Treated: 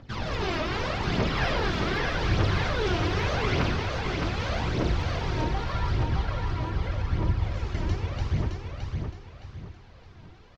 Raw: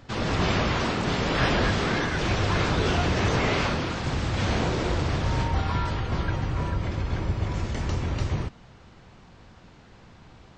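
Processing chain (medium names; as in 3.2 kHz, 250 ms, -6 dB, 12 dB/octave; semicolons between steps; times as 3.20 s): low-pass 6 kHz 24 dB/octave; phaser 0.83 Hz, delay 3.3 ms, feedback 62%; feedback delay 616 ms, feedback 34%, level -4.5 dB; trim -6 dB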